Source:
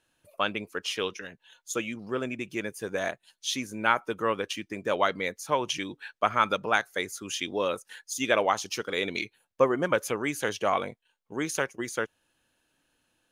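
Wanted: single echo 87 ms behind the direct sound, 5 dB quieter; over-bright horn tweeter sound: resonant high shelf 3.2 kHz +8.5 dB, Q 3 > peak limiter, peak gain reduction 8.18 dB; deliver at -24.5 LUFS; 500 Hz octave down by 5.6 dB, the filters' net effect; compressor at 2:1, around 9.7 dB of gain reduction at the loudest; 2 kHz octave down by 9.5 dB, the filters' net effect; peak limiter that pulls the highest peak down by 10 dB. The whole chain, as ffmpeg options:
-af "equalizer=f=500:t=o:g=-6,equalizer=f=2000:t=o:g=-8.5,acompressor=threshold=0.01:ratio=2,alimiter=level_in=2:limit=0.0631:level=0:latency=1,volume=0.501,highshelf=f=3200:t=q:w=3:g=8.5,aecho=1:1:87:0.562,volume=4.73,alimiter=limit=0.251:level=0:latency=1"

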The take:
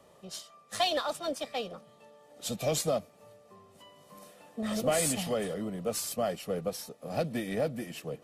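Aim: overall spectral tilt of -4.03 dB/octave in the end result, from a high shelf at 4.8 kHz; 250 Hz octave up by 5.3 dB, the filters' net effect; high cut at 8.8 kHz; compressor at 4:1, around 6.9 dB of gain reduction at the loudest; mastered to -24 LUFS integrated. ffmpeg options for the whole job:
-af "lowpass=8800,equalizer=f=250:t=o:g=6.5,highshelf=f=4800:g=4.5,acompressor=threshold=0.0282:ratio=4,volume=3.76"

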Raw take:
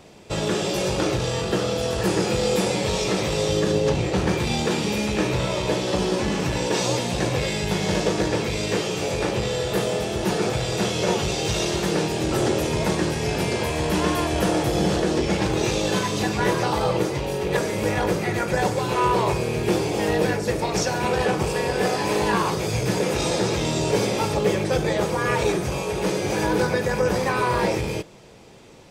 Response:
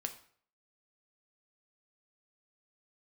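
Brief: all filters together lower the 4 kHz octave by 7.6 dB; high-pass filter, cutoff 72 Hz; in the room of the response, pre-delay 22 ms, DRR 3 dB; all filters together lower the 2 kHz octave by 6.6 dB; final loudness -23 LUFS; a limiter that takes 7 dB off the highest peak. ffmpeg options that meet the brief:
-filter_complex "[0:a]highpass=72,equalizer=f=2000:t=o:g=-6.5,equalizer=f=4000:t=o:g=-8,alimiter=limit=0.15:level=0:latency=1,asplit=2[s0][s1];[1:a]atrim=start_sample=2205,adelay=22[s2];[s1][s2]afir=irnorm=-1:irlink=0,volume=0.75[s3];[s0][s3]amix=inputs=2:normalize=0,volume=1.19"

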